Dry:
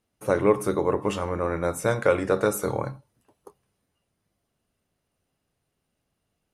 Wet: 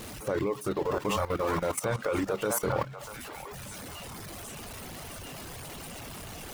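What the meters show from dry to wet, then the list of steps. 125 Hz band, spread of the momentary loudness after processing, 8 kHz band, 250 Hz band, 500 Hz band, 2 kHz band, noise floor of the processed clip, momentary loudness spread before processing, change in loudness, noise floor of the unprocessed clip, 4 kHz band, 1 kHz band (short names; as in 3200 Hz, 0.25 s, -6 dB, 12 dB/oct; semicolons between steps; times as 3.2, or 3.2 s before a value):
-3.5 dB, 12 LU, +2.0 dB, -4.5 dB, -6.5 dB, -4.0 dB, -43 dBFS, 6 LU, -8.0 dB, -79 dBFS, +3.5 dB, -3.0 dB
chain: zero-crossing step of -27 dBFS; reverb removal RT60 1.1 s; on a send: delay with a stepping band-pass 0.641 s, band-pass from 960 Hz, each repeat 1.4 oct, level -1.5 dB; on the sum: level quantiser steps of 14 dB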